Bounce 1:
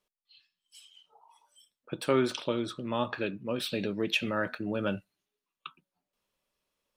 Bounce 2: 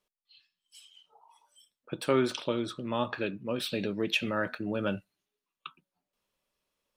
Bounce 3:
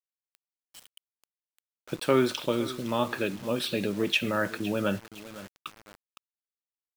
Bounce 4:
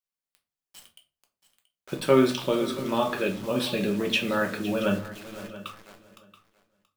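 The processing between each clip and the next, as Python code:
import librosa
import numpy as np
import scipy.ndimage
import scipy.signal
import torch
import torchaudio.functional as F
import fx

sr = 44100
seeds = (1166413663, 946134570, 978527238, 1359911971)

y1 = x
y2 = fx.echo_feedback(y1, sr, ms=512, feedback_pct=36, wet_db=-16.5)
y2 = fx.quant_dither(y2, sr, seeds[0], bits=8, dither='none')
y2 = F.gain(torch.from_numpy(y2), 3.0).numpy()
y3 = fx.echo_feedback(y2, sr, ms=679, feedback_pct=16, wet_db=-16.5)
y3 = fx.room_shoebox(y3, sr, seeds[1], volume_m3=170.0, walls='furnished', distance_m=1.1)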